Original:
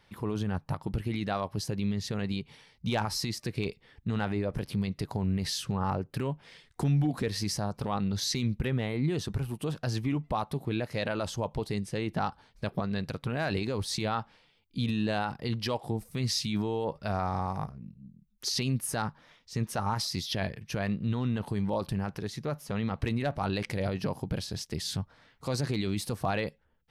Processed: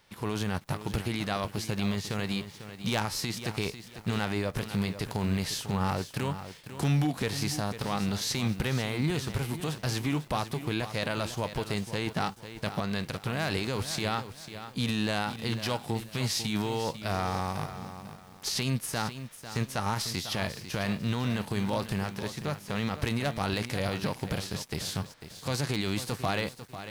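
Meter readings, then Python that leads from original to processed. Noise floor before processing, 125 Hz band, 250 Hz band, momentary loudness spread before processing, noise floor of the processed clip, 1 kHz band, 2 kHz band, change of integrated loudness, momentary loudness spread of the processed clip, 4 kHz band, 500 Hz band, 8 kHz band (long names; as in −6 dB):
−66 dBFS, 0.0 dB, 0.0 dB, 6 LU, −50 dBFS, +1.0 dB, +4.0 dB, +0.5 dB, 6 LU, +2.0 dB, 0.0 dB, +2.0 dB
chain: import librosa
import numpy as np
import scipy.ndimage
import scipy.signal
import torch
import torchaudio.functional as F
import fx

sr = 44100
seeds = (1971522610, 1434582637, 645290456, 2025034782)

y = fx.envelope_flatten(x, sr, power=0.6)
y = fx.peak_eq(y, sr, hz=12000.0, db=-2.5, octaves=0.85)
y = fx.echo_crushed(y, sr, ms=497, feedback_pct=35, bits=8, wet_db=-11.0)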